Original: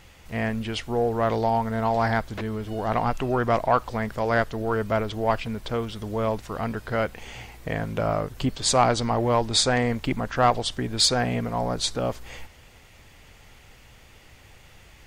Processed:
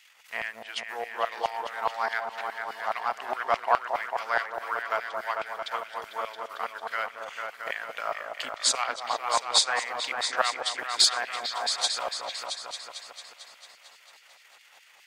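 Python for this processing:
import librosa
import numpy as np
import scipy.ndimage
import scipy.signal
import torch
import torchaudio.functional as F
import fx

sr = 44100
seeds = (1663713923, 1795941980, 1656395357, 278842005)

y = fx.transient(x, sr, attack_db=6, sustain_db=-11)
y = fx.echo_opening(y, sr, ms=224, hz=750, octaves=2, feedback_pct=70, wet_db=-3)
y = fx.filter_lfo_highpass(y, sr, shape='saw_down', hz=4.8, low_hz=830.0, high_hz=2500.0, q=1.2)
y = F.gain(torch.from_numpy(y), -3.5).numpy()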